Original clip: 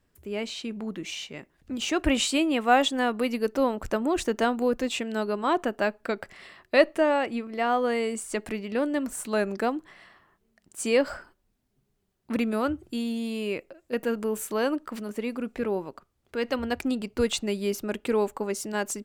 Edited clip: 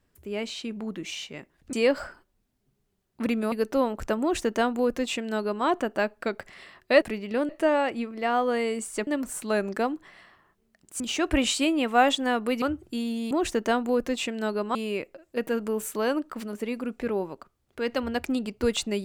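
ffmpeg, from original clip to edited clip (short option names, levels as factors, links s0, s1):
-filter_complex "[0:a]asplit=10[s0][s1][s2][s3][s4][s5][s6][s7][s8][s9];[s0]atrim=end=1.732[s10];[s1]atrim=start=10.828:end=12.622[s11];[s2]atrim=start=3.348:end=6.852[s12];[s3]atrim=start=8.428:end=8.902[s13];[s4]atrim=start=6.848:end=8.432[s14];[s5]atrim=start=8.898:end=10.832[s15];[s6]atrim=start=1.728:end=3.352[s16];[s7]atrim=start=12.618:end=13.312[s17];[s8]atrim=start=4.038:end=5.482[s18];[s9]atrim=start=13.308[s19];[s10][s11]acrossfade=d=0.004:c1=hsin:c2=hsin[s20];[s20][s12]acrossfade=d=0.004:c1=hsin:c2=hsin[s21];[s21][s13]acrossfade=d=0.004:c1=hsin:c2=hsin[s22];[s22][s14]acrossfade=d=0.004:c1=hsin:c2=hsin[s23];[s23][s15]acrossfade=d=0.004:c1=hsin:c2=hsin[s24];[s24][s16]acrossfade=d=0.004:c1=hsin:c2=hsin[s25];[s25][s17]acrossfade=d=0.004:c1=hsin:c2=hsin[s26];[s26][s18]acrossfade=d=0.004:c1=hsin:c2=hsin[s27];[s27][s19]acrossfade=d=0.004:c1=hsin:c2=hsin"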